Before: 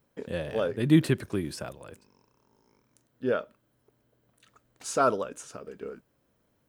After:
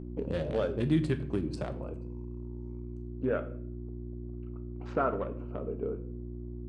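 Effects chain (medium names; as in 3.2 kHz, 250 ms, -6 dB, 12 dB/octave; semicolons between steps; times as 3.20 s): local Wiener filter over 25 samples; low-pass 9.1 kHz 24 dB/octave, from 3.25 s 2.6 kHz; compression 2.5:1, threshold -37 dBFS, peak gain reduction 15 dB; mains buzz 60 Hz, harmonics 6, -47 dBFS -1 dB/octave; simulated room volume 75 m³, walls mixed, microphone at 0.3 m; trim +5.5 dB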